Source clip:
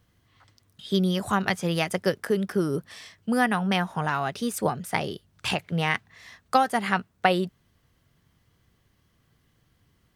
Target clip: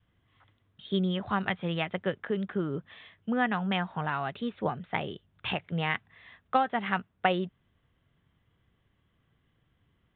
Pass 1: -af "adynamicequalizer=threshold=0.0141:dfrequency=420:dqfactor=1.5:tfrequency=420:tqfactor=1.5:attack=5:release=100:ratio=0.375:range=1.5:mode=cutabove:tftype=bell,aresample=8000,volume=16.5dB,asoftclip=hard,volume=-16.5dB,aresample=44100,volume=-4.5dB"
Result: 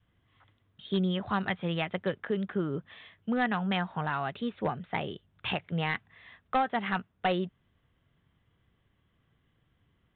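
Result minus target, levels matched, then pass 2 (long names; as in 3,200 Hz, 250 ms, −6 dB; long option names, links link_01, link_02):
gain into a clipping stage and back: distortion +40 dB
-af "adynamicequalizer=threshold=0.0141:dfrequency=420:dqfactor=1.5:tfrequency=420:tqfactor=1.5:attack=5:release=100:ratio=0.375:range=1.5:mode=cutabove:tftype=bell,aresample=8000,volume=6.5dB,asoftclip=hard,volume=-6.5dB,aresample=44100,volume=-4.5dB"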